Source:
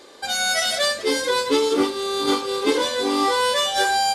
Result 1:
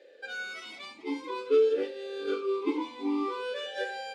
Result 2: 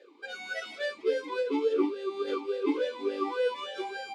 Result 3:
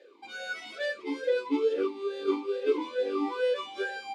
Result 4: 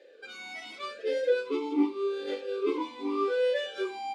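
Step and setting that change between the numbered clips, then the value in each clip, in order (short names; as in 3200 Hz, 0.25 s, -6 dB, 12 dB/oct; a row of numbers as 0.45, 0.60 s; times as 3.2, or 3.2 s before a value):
vowel sweep, rate: 0.51, 3.5, 2.3, 0.85 Hz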